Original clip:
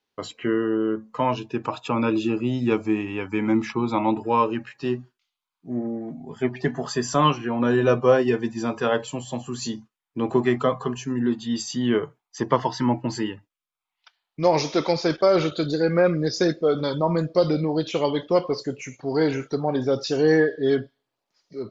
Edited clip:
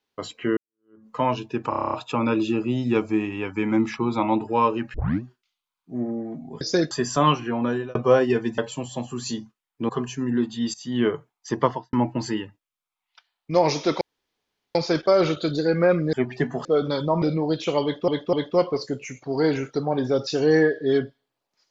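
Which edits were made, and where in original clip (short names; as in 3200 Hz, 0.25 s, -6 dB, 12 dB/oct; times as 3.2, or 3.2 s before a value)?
0.57–1.07 fade in exponential
1.69 stutter 0.03 s, 9 plays
4.7 tape start 0.28 s
6.37–6.89 swap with 16.28–16.58
7.55–7.93 fade out
8.56–8.94 cut
10.25–10.78 cut
11.63–11.91 fade in, from -17 dB
12.51–12.82 studio fade out
14.9 insert room tone 0.74 s
17.15–17.49 cut
18.1–18.35 loop, 3 plays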